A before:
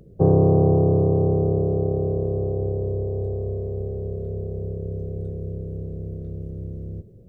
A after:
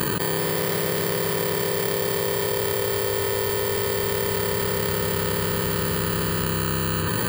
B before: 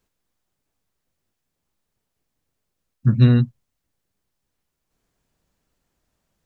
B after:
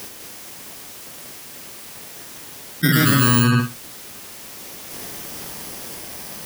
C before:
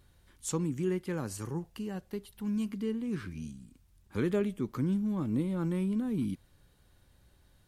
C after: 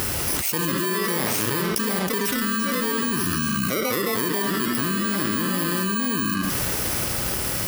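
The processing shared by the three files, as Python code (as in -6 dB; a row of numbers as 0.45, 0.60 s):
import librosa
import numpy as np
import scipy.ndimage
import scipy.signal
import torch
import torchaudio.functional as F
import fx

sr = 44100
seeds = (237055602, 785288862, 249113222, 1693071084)

p1 = fx.bit_reversed(x, sr, seeds[0], block=32)
p2 = fx.highpass(p1, sr, hz=490.0, slope=6)
p3 = p2 + fx.echo_filtered(p2, sr, ms=75, feedback_pct=15, hz=4000.0, wet_db=-7.0, dry=0)
p4 = fx.echo_pitch(p3, sr, ms=203, semitones=2, count=2, db_per_echo=-6.0)
p5 = fx.env_flatten(p4, sr, amount_pct=100)
y = p5 * 10.0 ** (-24 / 20.0) / np.sqrt(np.mean(np.square(p5)))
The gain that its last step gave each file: -6.0, +3.0, +5.0 dB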